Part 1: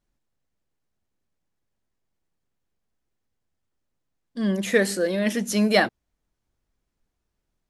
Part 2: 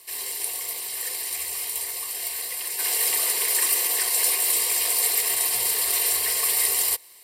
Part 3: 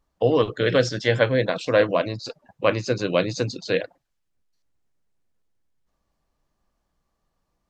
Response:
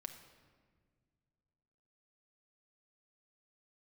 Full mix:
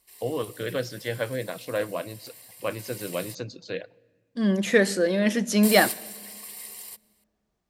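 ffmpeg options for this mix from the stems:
-filter_complex "[0:a]equalizer=frequency=11000:width_type=o:width=0.77:gain=-4.5,volume=-1dB,asplit=3[link_01][link_02][link_03];[link_02]volume=-8.5dB[link_04];[1:a]volume=-5.5dB,asplit=3[link_05][link_06][link_07];[link_05]atrim=end=3.35,asetpts=PTS-STARTPTS,afade=type=out:start_time=3.346:duration=0.004:curve=hsin[link_08];[link_06]atrim=start=3.35:end=5.63,asetpts=PTS-STARTPTS,volume=0[link_09];[link_07]atrim=start=5.63,asetpts=PTS-STARTPTS,afade=type=in:duration=0.004:curve=hsin[link_10];[link_08][link_09][link_10]concat=n=3:v=0:a=1[link_11];[2:a]volume=-11dB,asplit=2[link_12][link_13];[link_13]volume=-12dB[link_14];[link_03]apad=whole_len=319216[link_15];[link_11][link_15]sidechaingate=range=-13dB:threshold=-29dB:ratio=16:detection=peak[link_16];[3:a]atrim=start_sample=2205[link_17];[link_04][link_14]amix=inputs=2:normalize=0[link_18];[link_18][link_17]afir=irnorm=-1:irlink=0[link_19];[link_01][link_16][link_12][link_19]amix=inputs=4:normalize=0,highpass=45"

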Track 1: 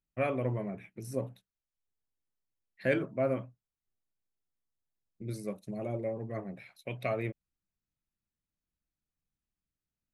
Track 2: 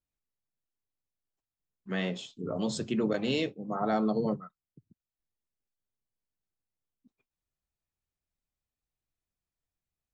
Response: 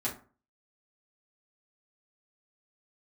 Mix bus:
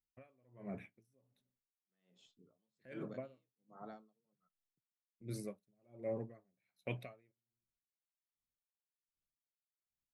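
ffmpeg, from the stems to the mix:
-filter_complex "[0:a]agate=range=-7dB:threshold=-54dB:ratio=16:detection=peak,alimiter=level_in=0.5dB:limit=-24dB:level=0:latency=1:release=310,volume=-0.5dB,volume=-2dB,asplit=2[link_01][link_02];[link_02]volume=-20.5dB[link_03];[1:a]volume=-20dB[link_04];[2:a]atrim=start_sample=2205[link_05];[link_03][link_05]afir=irnorm=-1:irlink=0[link_06];[link_01][link_04][link_06]amix=inputs=3:normalize=0,aeval=exprs='val(0)*pow(10,-39*(0.5-0.5*cos(2*PI*1.3*n/s))/20)':channel_layout=same"

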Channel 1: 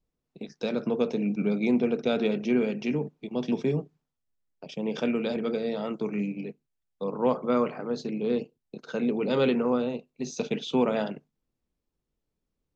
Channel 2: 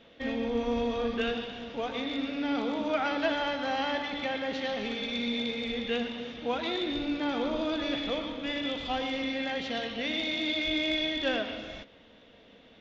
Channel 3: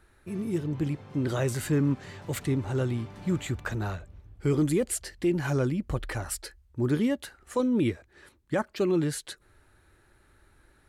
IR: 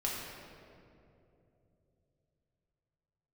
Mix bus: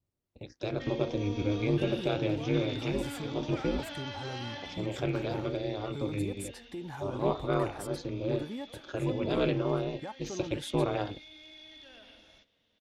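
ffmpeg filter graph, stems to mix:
-filter_complex "[0:a]aeval=exprs='val(0)*sin(2*PI*100*n/s)':channel_layout=same,volume=-1.5dB[link_01];[1:a]equalizer=frequency=5900:width=0.58:gain=13.5,alimiter=limit=-22dB:level=0:latency=1:release=15,adelay=600,volume=-11dB,afade=type=out:start_time=4.56:duration=0.37:silence=0.281838[link_02];[2:a]equalizer=frequency=850:width=3.3:gain=13,alimiter=limit=-22.5dB:level=0:latency=1:release=164,adelay=1500,volume=-10dB[link_03];[link_01][link_02][link_03]amix=inputs=3:normalize=0"

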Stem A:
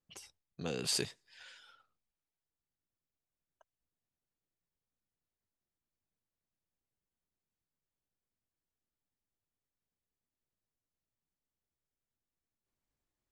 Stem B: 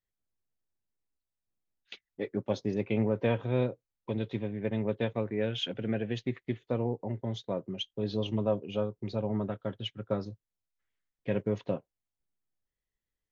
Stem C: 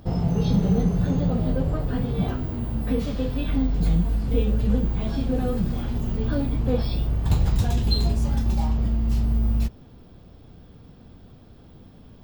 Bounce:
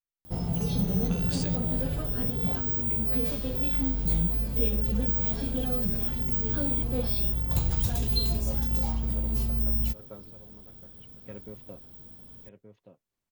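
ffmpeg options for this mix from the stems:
ffmpeg -i stem1.wav -i stem2.wav -i stem3.wav -filter_complex "[0:a]acompressor=threshold=-43dB:ratio=2,adelay=450,volume=2.5dB[link_01];[1:a]volume=-14dB,asplit=2[link_02][link_03];[link_03]volume=-8.5dB[link_04];[2:a]aemphasis=mode=production:type=50fm,adelay=250,volume=-6.5dB[link_05];[link_04]aecho=0:1:1175:1[link_06];[link_01][link_02][link_05][link_06]amix=inputs=4:normalize=0" out.wav

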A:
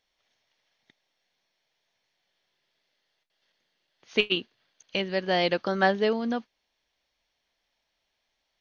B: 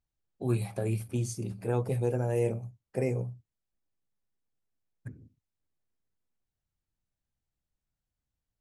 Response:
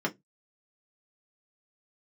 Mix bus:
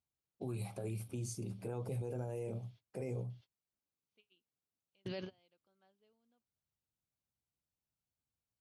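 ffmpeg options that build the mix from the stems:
-filter_complex "[0:a]equalizer=frequency=3100:width=1.5:gain=4,volume=-2.5dB[link_01];[1:a]bandreject=frequency=3300:width=26,volume=-4.5dB,asplit=2[link_02][link_03];[link_03]apad=whole_len=379541[link_04];[link_01][link_04]sidechaingate=range=-48dB:threshold=-56dB:ratio=16:detection=peak[link_05];[link_05][link_02]amix=inputs=2:normalize=0,highpass=82,equalizer=frequency=1800:width=5.3:gain=-9.5,alimiter=level_in=8.5dB:limit=-24dB:level=0:latency=1:release=51,volume=-8.5dB"

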